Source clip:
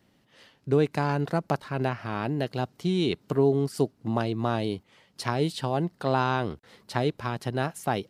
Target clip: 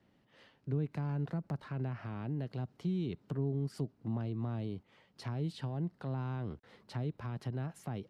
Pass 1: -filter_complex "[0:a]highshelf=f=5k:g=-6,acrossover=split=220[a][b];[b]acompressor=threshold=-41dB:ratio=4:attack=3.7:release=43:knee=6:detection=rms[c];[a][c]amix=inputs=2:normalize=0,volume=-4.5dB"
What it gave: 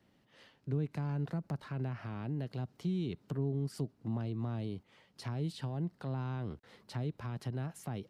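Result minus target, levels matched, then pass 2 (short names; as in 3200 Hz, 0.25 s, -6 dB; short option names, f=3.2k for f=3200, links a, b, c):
8000 Hz band +4.5 dB
-filter_complex "[0:a]highshelf=f=5k:g=-14.5,acrossover=split=220[a][b];[b]acompressor=threshold=-41dB:ratio=4:attack=3.7:release=43:knee=6:detection=rms[c];[a][c]amix=inputs=2:normalize=0,volume=-4.5dB"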